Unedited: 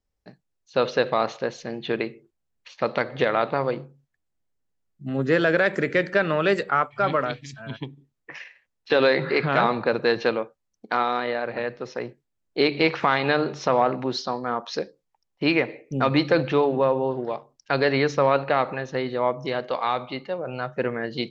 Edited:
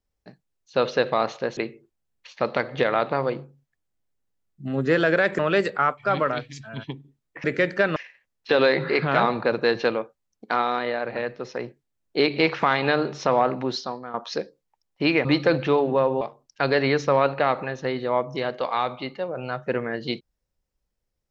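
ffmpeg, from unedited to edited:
-filter_complex "[0:a]asplit=8[a][b][c][d][e][f][g][h];[a]atrim=end=1.572[i];[b]atrim=start=1.978:end=5.802[j];[c]atrim=start=6.318:end=8.372[k];[d]atrim=start=5.798:end=6.322[l];[e]atrim=start=8.368:end=14.55,asetpts=PTS-STARTPTS,afade=t=out:st=5.762:d=0.42:silence=0.223872[m];[f]atrim=start=14.55:end=15.662,asetpts=PTS-STARTPTS,afade=t=in:d=0.004:c=hsin:silence=0.223872[n];[g]atrim=start=16.098:end=17.062[o];[h]atrim=start=17.308[p];[i][j]acrossfade=d=0.004:c1=hsin:c2=hsin[q];[q][k]acrossfade=d=0.004:c1=hsin:c2=hsin[r];[r][l]acrossfade=d=0.004:c1=hsin:c2=hsin[s];[m][n]concat=n=2:v=0:a=1[t];[s][t]acrossfade=d=0.004:c1=hsin:c2=hsin[u];[u][o]acrossfade=d=0.004:c1=hsin:c2=hsin[v];[v][p]acrossfade=d=0.004:c1=hsin:c2=hsin"

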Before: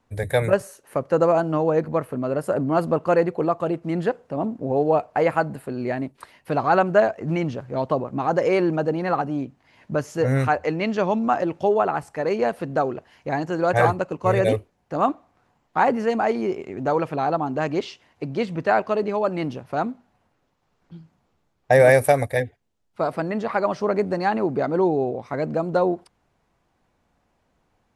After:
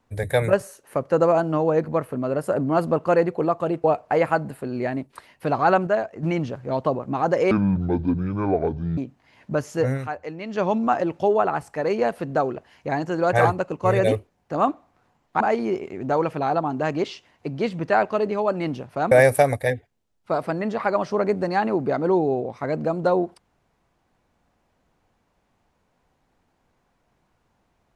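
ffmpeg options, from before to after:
-filter_complex "[0:a]asplit=10[a][b][c][d][e][f][g][h][i][j];[a]atrim=end=3.842[k];[b]atrim=start=4.888:end=6.922[l];[c]atrim=start=6.918:end=7.282,asetpts=PTS-STARTPTS,volume=-5dB[m];[d]atrim=start=7.278:end=8.564[n];[e]atrim=start=8.56:end=9.38,asetpts=PTS-STARTPTS,asetrate=24696,aresample=44100[o];[f]atrim=start=9.376:end=10.39,asetpts=PTS-STARTPTS,afade=t=out:st=0.814:d=0.2:c=qsin:silence=0.334965[p];[g]atrim=start=10.39:end=10.89,asetpts=PTS-STARTPTS,volume=-9.5dB[q];[h]atrim=start=10.89:end=15.812,asetpts=PTS-STARTPTS,afade=t=in:d=0.2:c=qsin:silence=0.334965[r];[i]atrim=start=16.168:end=19.882[s];[j]atrim=start=21.808[t];[k][l]acrossfade=d=0.004:c1=hsin:c2=hsin[u];[u][m]acrossfade=d=0.004:c1=hsin:c2=hsin[v];[v][n]acrossfade=d=0.004:c1=hsin:c2=hsin[w];[w][o]acrossfade=d=0.004:c1=hsin:c2=hsin[x];[p][q][r]concat=n=3:v=0:a=1[y];[x][y]acrossfade=d=0.004:c1=hsin:c2=hsin[z];[z][s]acrossfade=d=0.004:c1=hsin:c2=hsin[aa];[aa][t]acrossfade=d=0.004:c1=hsin:c2=hsin"

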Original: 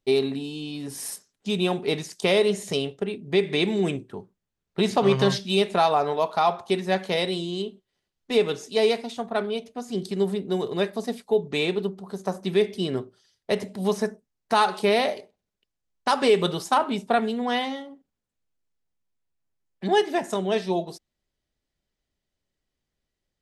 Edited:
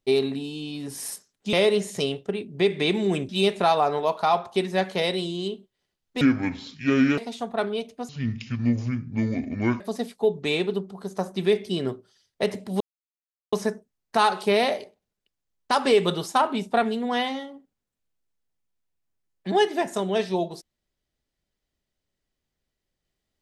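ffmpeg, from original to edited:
-filter_complex "[0:a]asplit=8[a][b][c][d][e][f][g][h];[a]atrim=end=1.532[i];[b]atrim=start=2.258:end=4.022[j];[c]atrim=start=5.428:end=8.354[k];[d]atrim=start=8.35:end=8.95,asetpts=PTS-STARTPTS,asetrate=27342,aresample=44100,atrim=end_sample=42677,asetpts=PTS-STARTPTS[l];[e]atrim=start=8.946:end=9.864[m];[f]atrim=start=9.86:end=10.89,asetpts=PTS-STARTPTS,asetrate=26460,aresample=44100[n];[g]atrim=start=10.886:end=13.89,asetpts=PTS-STARTPTS,afade=t=out:st=3:d=0.004:c=hsin,apad=pad_dur=0.72[o];[h]atrim=start=13.89,asetpts=PTS-STARTPTS,afade=t=in:d=0.004:c=hsin[p];[i][j]acrossfade=d=0.004:c1=hsin:c2=hsin[q];[q][k]acrossfade=d=0.004:c1=hsin:c2=hsin[r];[r][l]acrossfade=d=0.004:c1=hsin:c2=hsin[s];[s][m]acrossfade=d=0.004:c1=hsin:c2=hsin[t];[t][n]acrossfade=d=0.004:c1=hsin:c2=hsin[u];[o][p]concat=n=2:v=0:a=1[v];[u][v]acrossfade=d=0.004:c1=hsin:c2=hsin"

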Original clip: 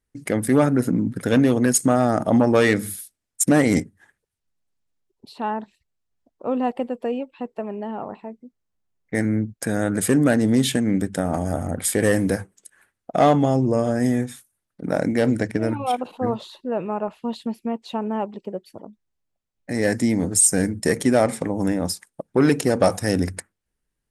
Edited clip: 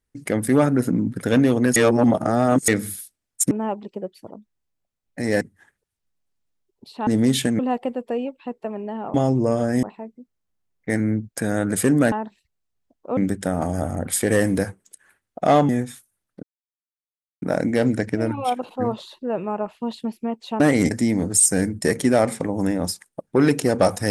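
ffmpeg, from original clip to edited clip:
-filter_complex "[0:a]asplit=15[a][b][c][d][e][f][g][h][i][j][k][l][m][n][o];[a]atrim=end=1.762[p];[b]atrim=start=1.758:end=2.682,asetpts=PTS-STARTPTS,areverse[q];[c]atrim=start=2.678:end=3.512[r];[d]atrim=start=18.018:end=19.922[s];[e]atrim=start=3.818:end=5.482[t];[f]atrim=start=10.368:end=10.892[u];[g]atrim=start=6.528:end=8.082[v];[h]atrim=start=13.408:end=14.102[w];[i]atrim=start=8.078:end=10.372[x];[j]atrim=start=5.478:end=6.532[y];[k]atrim=start=10.888:end=13.412[z];[l]atrim=start=14.098:end=14.84,asetpts=PTS-STARTPTS,afade=t=out:st=0.738:d=0.004:c=hsin,apad=pad_dur=0.99[aa];[m]atrim=start=14.84:end=18.022,asetpts=PTS-STARTPTS,afade=t=in:d=0.004:c=hsin[ab];[n]atrim=start=3.508:end=3.822[ac];[o]atrim=start=19.918[ad];[p][q]acrossfade=d=0.004:c1=hsin:c2=hsin[ae];[ae][r]acrossfade=d=0.004:c1=hsin:c2=hsin[af];[af][s]acrossfade=d=0.004:c1=hsin:c2=hsin[ag];[ag][t]acrossfade=d=0.004:c1=hsin:c2=hsin[ah];[ah][u]acrossfade=d=0.004:c1=hsin:c2=hsin[ai];[ai][v]acrossfade=d=0.004:c1=hsin:c2=hsin[aj];[aj][w]acrossfade=d=0.004:c1=hsin:c2=hsin[ak];[ak][x]acrossfade=d=0.004:c1=hsin:c2=hsin[al];[al][y]acrossfade=d=0.004:c1=hsin:c2=hsin[am];[am][z]acrossfade=d=0.004:c1=hsin:c2=hsin[an];[aa][ab]concat=n=2:v=0:a=1[ao];[an][ao]acrossfade=d=0.004:c1=hsin:c2=hsin[ap];[ap][ac]acrossfade=d=0.004:c1=hsin:c2=hsin[aq];[aq][ad]acrossfade=d=0.004:c1=hsin:c2=hsin"

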